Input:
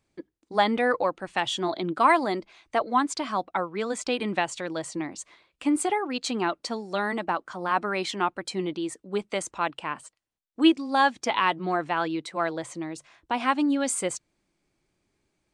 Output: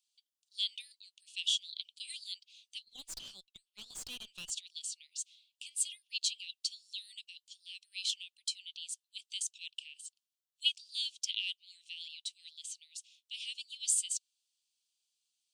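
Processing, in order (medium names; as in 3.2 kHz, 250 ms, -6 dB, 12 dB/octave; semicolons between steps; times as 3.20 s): steep high-pass 2.8 kHz 72 dB/octave; 2.83–4.50 s: valve stage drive 40 dB, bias 0.65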